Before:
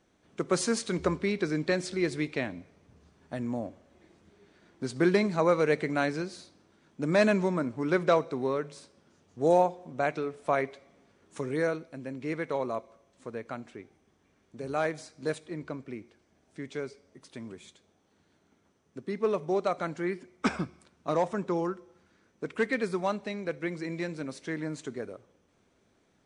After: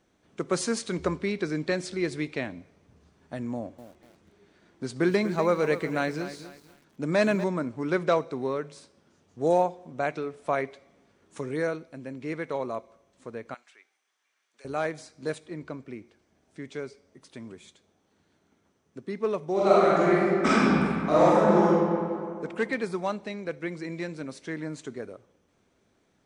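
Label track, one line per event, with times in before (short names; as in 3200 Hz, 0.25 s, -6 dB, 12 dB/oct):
3.540000	7.440000	lo-fi delay 0.243 s, feedback 35%, word length 8-bit, level -12 dB
13.540000	14.650000	HPF 1400 Hz
19.520000	21.660000	reverb throw, RT60 2.4 s, DRR -10 dB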